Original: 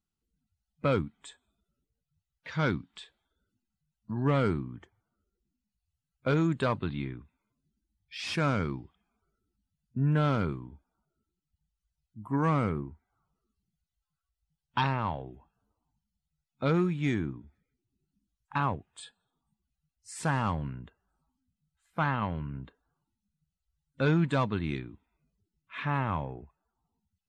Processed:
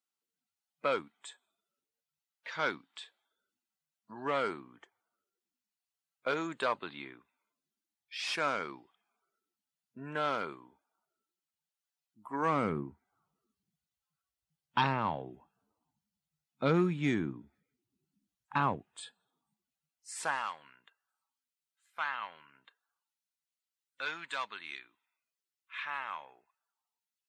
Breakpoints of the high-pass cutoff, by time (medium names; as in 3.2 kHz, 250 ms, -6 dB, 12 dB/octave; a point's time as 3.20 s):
12.32 s 550 Hz
12.74 s 170 Hz
19.02 s 170 Hz
20.11 s 390 Hz
20.50 s 1.4 kHz